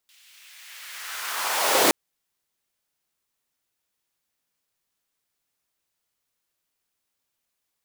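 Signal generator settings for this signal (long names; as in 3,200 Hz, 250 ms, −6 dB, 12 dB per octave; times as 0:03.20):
filter sweep on noise pink, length 1.82 s highpass, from 2,900 Hz, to 330 Hz, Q 1.6, linear, gain ramp +39 dB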